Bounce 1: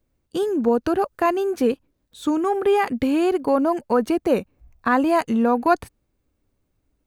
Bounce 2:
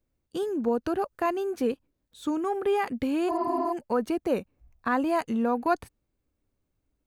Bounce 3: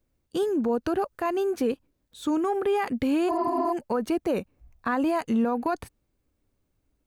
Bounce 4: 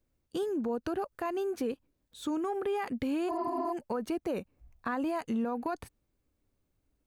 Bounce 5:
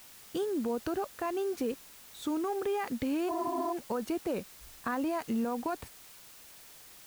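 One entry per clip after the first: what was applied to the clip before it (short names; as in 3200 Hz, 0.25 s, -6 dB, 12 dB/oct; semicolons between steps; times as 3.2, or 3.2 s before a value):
spectral repair 3.31–3.67, 270–6200 Hz after; gain -7 dB
limiter -21.5 dBFS, peak gain reduction 9.5 dB; gain +4 dB
compressor 1.5:1, threshold -32 dBFS, peak gain reduction 4.5 dB; gain -3.5 dB
added noise white -53 dBFS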